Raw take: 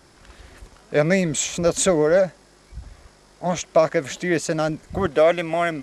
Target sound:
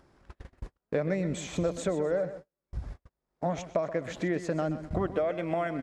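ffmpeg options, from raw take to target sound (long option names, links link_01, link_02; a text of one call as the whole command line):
ffmpeg -i in.wav -filter_complex "[0:a]acompressor=threshold=-25dB:ratio=8,highshelf=frequency=6200:gain=-5.5,asplit=2[link_01][link_02];[link_02]aecho=0:1:128|256|384|512:0.237|0.0925|0.0361|0.0141[link_03];[link_01][link_03]amix=inputs=2:normalize=0,agate=range=-48dB:threshold=-40dB:ratio=16:detection=peak,acompressor=mode=upward:threshold=-31dB:ratio=2.5,highshelf=frequency=2200:gain=-11.5" out.wav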